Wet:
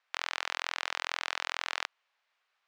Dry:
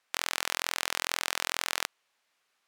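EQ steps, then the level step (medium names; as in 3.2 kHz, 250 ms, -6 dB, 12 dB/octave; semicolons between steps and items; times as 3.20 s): high-pass 650 Hz 12 dB/octave; distance through air 70 m; peaking EQ 13 kHz -12.5 dB 1.3 oct; 0.0 dB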